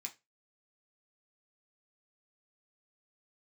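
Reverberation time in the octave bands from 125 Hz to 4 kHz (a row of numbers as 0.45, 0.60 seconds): 0.30, 0.20, 0.25, 0.20, 0.20, 0.20 seconds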